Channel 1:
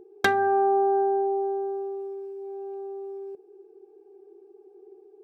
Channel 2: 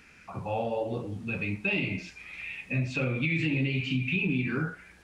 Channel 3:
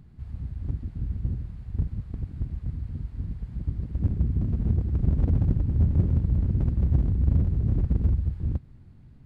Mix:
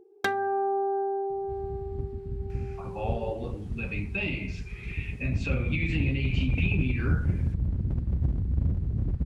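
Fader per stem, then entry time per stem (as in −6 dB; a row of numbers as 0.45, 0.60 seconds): −5.5, −2.5, −4.5 decibels; 0.00, 2.50, 1.30 seconds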